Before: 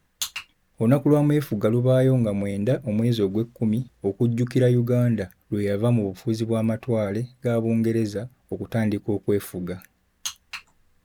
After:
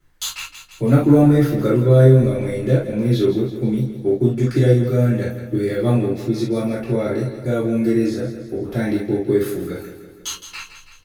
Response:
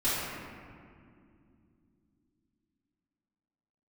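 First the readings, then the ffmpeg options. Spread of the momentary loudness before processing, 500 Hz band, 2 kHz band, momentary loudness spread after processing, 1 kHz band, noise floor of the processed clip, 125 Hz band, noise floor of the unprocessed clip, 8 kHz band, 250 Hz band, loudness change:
14 LU, +5.0 dB, +4.5 dB, 17 LU, +5.0 dB, -45 dBFS, +6.0 dB, -66 dBFS, n/a, +4.5 dB, +5.5 dB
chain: -filter_complex "[0:a]aecho=1:1:164|328|492|656|820|984:0.282|0.158|0.0884|0.0495|0.0277|0.0155[a];[1:a]atrim=start_sample=2205,atrim=end_sample=4410,asetrate=52920,aresample=44100[b];[a][b]afir=irnorm=-1:irlink=0,volume=-3dB"

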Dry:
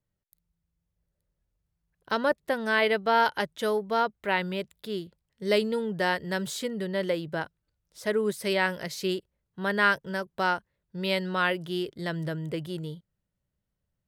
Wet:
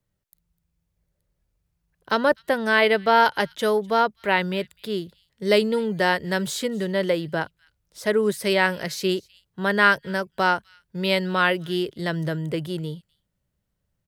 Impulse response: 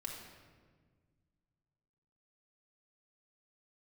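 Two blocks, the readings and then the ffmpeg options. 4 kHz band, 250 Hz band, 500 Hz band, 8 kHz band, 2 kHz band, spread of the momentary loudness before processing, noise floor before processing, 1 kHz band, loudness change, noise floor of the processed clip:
+5.5 dB, +5.5 dB, +5.5 dB, +5.5 dB, +5.5 dB, 12 LU, -83 dBFS, +5.5 dB, +5.5 dB, -77 dBFS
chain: -filter_complex "[0:a]acrossover=split=110|1700[a][b][c];[a]acrusher=samples=11:mix=1:aa=0.000001:lfo=1:lforange=17.6:lforate=0.21[d];[c]aecho=1:1:252:0.0708[e];[d][b][e]amix=inputs=3:normalize=0,volume=5.5dB"

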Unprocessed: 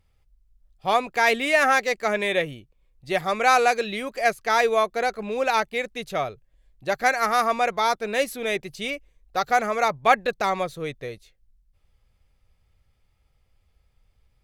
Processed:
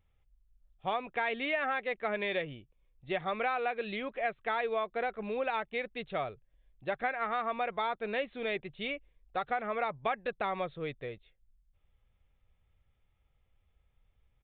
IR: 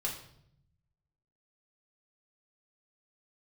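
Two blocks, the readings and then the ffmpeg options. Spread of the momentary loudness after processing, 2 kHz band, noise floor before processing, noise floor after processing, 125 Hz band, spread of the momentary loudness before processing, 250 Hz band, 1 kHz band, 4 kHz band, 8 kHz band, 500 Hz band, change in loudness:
8 LU, -11.5 dB, -67 dBFS, -74 dBFS, -8.0 dB, 11 LU, -8.5 dB, -12.0 dB, -12.5 dB, under -40 dB, -10.0 dB, -11.5 dB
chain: -af "acompressor=threshold=-22dB:ratio=6,aresample=8000,aresample=44100,volume=-6.5dB"

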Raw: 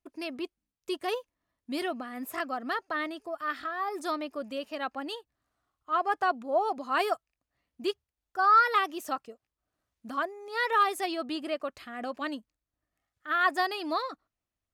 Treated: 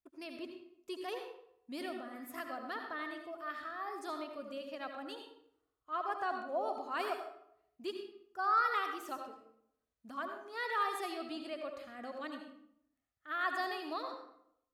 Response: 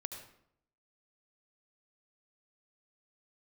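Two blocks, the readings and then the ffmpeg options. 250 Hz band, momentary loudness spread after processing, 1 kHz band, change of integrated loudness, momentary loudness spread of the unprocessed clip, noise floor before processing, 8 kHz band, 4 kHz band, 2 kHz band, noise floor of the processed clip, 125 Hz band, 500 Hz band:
-8.5 dB, 15 LU, -9.0 dB, -9.0 dB, 13 LU, under -85 dBFS, -9.0 dB, -9.0 dB, -8.5 dB, under -85 dBFS, n/a, -8.0 dB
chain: -filter_complex "[1:a]atrim=start_sample=2205[a];[0:a][a]afir=irnorm=-1:irlink=0,volume=-7dB"

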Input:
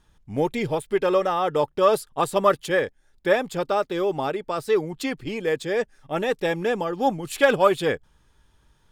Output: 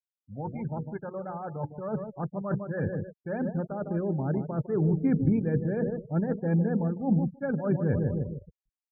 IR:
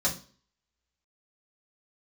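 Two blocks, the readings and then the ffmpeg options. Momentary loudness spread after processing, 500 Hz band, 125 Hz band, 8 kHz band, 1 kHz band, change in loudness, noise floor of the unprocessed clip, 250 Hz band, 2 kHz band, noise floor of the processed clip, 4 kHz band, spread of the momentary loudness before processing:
11 LU, -11.0 dB, +8.0 dB, under -40 dB, -15.0 dB, -6.0 dB, -62 dBFS, +2.0 dB, -16.0 dB, under -85 dBFS, under -40 dB, 9 LU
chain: -filter_complex "[0:a]dynaudnorm=f=240:g=13:m=7dB,lowpass=f=1.6k:w=0.5412,lowpass=f=1.6k:w=1.3066,bandreject=f=60:t=h:w=6,bandreject=f=120:t=h:w=6,bandreject=f=180:t=h:w=6,bandreject=f=240:t=h:w=6,bandreject=f=300:t=h:w=6,bandreject=f=360:t=h:w=6,bandreject=f=420:t=h:w=6,bandreject=f=480:t=h:w=6,aecho=1:1:1.3:0.5,asplit=2[a][b];[b]adelay=155,lowpass=f=890:p=1,volume=-9dB,asplit=2[c][d];[d]adelay=155,lowpass=f=890:p=1,volume=0.52,asplit=2[e][f];[f]adelay=155,lowpass=f=890:p=1,volume=0.52,asplit=2[g][h];[h]adelay=155,lowpass=f=890:p=1,volume=0.52,asplit=2[i][j];[j]adelay=155,lowpass=f=890:p=1,volume=0.52,asplit=2[k][l];[l]adelay=155,lowpass=f=890:p=1,volume=0.52[m];[a][c][e][g][i][k][m]amix=inputs=7:normalize=0,areverse,acompressor=threshold=-34dB:ratio=4,areverse,aeval=exprs='sgn(val(0))*max(abs(val(0))-0.00299,0)':c=same,afftfilt=real='re*gte(hypot(re,im),0.00891)':imag='im*gte(hypot(re,im),0.00891)':win_size=1024:overlap=0.75,highpass=84,asubboost=boost=12:cutoff=240"

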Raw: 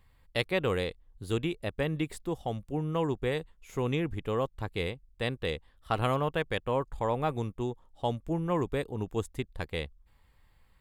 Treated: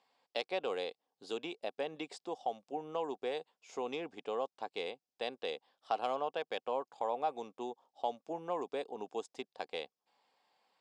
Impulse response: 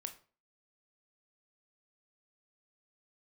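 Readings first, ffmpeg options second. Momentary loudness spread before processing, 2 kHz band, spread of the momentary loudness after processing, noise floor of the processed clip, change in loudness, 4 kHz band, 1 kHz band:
8 LU, -9.5 dB, 8 LU, under -85 dBFS, -7.0 dB, -5.5 dB, -2.5 dB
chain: -af "asoftclip=type=tanh:threshold=-14.5dB,highpass=f=290:w=0.5412,highpass=f=290:w=1.3066,equalizer=f=330:t=q:w=4:g=-7,equalizer=f=750:t=q:w=4:g=9,equalizer=f=1.3k:t=q:w=4:g=-4,equalizer=f=1.9k:t=q:w=4:g=-8,equalizer=f=5.1k:t=q:w=4:g=7,lowpass=f=7.2k:w=0.5412,lowpass=f=7.2k:w=1.3066,acompressor=threshold=-35dB:ratio=1.5,volume=-2.5dB"

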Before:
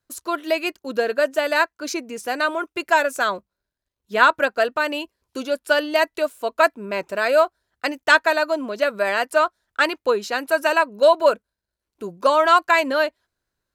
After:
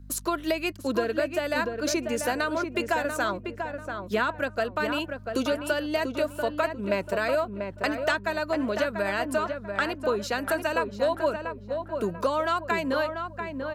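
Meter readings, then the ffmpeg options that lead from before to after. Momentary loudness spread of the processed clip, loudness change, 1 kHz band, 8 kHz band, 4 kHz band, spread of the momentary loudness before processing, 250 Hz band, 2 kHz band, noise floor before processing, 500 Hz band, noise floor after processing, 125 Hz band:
5 LU, -7.5 dB, -9.0 dB, -1.5 dB, -7.0 dB, 12 LU, 0.0 dB, -8.5 dB, -85 dBFS, -6.5 dB, -44 dBFS, n/a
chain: -filter_complex "[0:a]aeval=exprs='val(0)+0.00355*(sin(2*PI*50*n/s)+sin(2*PI*2*50*n/s)/2+sin(2*PI*3*50*n/s)/3+sin(2*PI*4*50*n/s)/4+sin(2*PI*5*50*n/s)/5)':c=same,acrossover=split=210[a][b];[b]acompressor=threshold=-31dB:ratio=5[c];[a][c]amix=inputs=2:normalize=0,asplit=2[d][e];[e]adelay=690,lowpass=f=1.8k:p=1,volume=-5.5dB,asplit=2[f][g];[g]adelay=690,lowpass=f=1.8k:p=1,volume=0.36,asplit=2[h][i];[i]adelay=690,lowpass=f=1.8k:p=1,volume=0.36,asplit=2[j][k];[k]adelay=690,lowpass=f=1.8k:p=1,volume=0.36[l];[d][f][h][j][l]amix=inputs=5:normalize=0,volume=5dB"

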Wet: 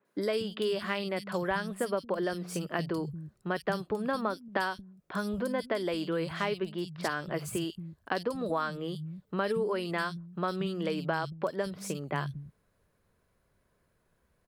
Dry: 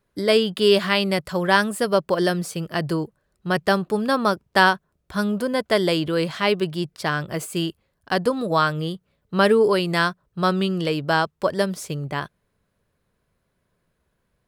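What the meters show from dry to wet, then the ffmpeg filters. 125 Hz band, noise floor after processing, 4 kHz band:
-10.0 dB, -74 dBFS, -14.5 dB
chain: -filter_complex "[0:a]acompressor=threshold=-28dB:ratio=6,acrossover=split=170|3300[a][b][c];[c]adelay=50[d];[a]adelay=230[e];[e][b][d]amix=inputs=3:normalize=0,adynamicequalizer=threshold=0.00224:dfrequency=4100:dqfactor=0.7:tfrequency=4100:tqfactor=0.7:attack=5:release=100:ratio=0.375:range=2.5:mode=cutabove:tftype=highshelf"

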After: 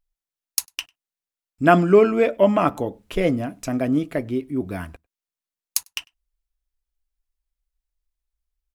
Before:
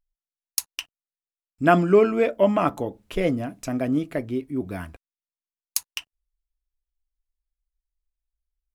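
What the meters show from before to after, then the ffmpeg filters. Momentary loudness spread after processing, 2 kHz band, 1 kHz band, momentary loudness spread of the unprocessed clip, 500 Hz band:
18 LU, +2.5 dB, +2.5 dB, 18 LU, +2.5 dB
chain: -filter_complex "[0:a]asplit=2[a][b];[b]adelay=99.13,volume=-30dB,highshelf=f=4k:g=-2.23[c];[a][c]amix=inputs=2:normalize=0,volume=2.5dB"

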